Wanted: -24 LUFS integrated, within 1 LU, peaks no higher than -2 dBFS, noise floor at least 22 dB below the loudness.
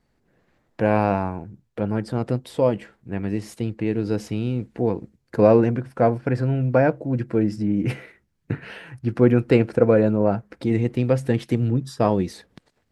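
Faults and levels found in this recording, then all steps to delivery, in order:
loudness -22.5 LUFS; peak level -2.5 dBFS; loudness target -24.0 LUFS
-> trim -1.5 dB

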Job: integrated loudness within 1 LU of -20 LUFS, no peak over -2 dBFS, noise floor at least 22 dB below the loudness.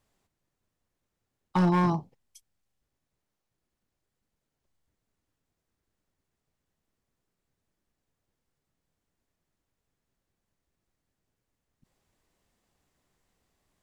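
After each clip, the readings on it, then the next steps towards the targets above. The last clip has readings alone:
clipped samples 0.2%; clipping level -18.5 dBFS; loudness -26.5 LUFS; peak level -18.5 dBFS; loudness target -20.0 LUFS
-> clip repair -18.5 dBFS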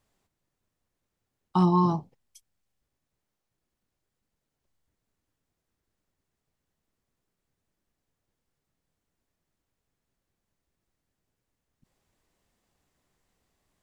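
clipped samples 0.0%; loudness -25.0 LUFS; peak level -11.0 dBFS; loudness target -20.0 LUFS
-> trim +5 dB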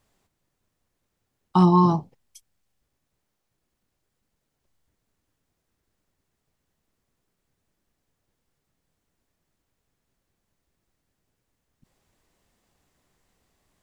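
loudness -20.0 LUFS; peak level -6.0 dBFS; noise floor -79 dBFS

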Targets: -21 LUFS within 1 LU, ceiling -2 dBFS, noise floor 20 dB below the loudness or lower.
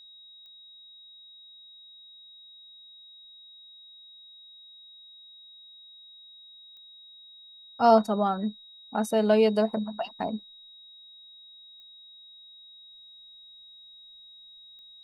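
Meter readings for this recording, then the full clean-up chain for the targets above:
clicks found 4; steady tone 3.8 kHz; tone level -48 dBFS; loudness -25.5 LUFS; peak level -8.0 dBFS; loudness target -21.0 LUFS
-> de-click; band-stop 3.8 kHz, Q 30; trim +4.5 dB

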